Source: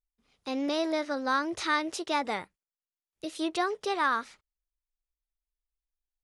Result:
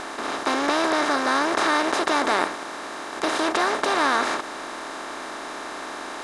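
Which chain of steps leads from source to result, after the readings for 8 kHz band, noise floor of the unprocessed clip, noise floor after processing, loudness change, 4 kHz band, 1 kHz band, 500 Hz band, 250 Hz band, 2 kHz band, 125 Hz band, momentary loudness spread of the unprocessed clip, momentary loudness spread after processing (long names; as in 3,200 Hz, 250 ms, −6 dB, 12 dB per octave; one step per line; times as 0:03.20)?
+12.0 dB, below −85 dBFS, −35 dBFS, +6.0 dB, +9.5 dB, +9.0 dB, +8.0 dB, +6.0 dB, +9.5 dB, can't be measured, 10 LU, 12 LU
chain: compressor on every frequency bin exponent 0.2
Ogg Vorbis 64 kbit/s 48,000 Hz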